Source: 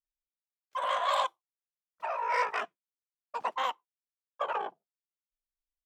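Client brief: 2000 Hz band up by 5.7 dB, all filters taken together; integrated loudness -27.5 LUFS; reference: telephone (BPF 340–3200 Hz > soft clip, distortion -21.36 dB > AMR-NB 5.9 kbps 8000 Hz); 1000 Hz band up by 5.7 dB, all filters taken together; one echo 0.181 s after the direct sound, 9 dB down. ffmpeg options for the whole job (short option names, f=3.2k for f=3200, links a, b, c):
-af "highpass=340,lowpass=3.2k,equalizer=f=1k:t=o:g=5,equalizer=f=2k:t=o:g=6,aecho=1:1:181:0.355,asoftclip=threshold=-15dB,volume=3.5dB" -ar 8000 -c:a libopencore_amrnb -b:a 5900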